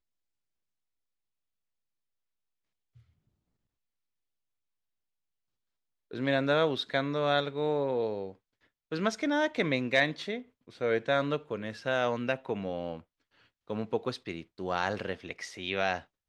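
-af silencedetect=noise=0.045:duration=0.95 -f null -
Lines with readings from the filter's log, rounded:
silence_start: 0.00
silence_end: 6.18 | silence_duration: 6.18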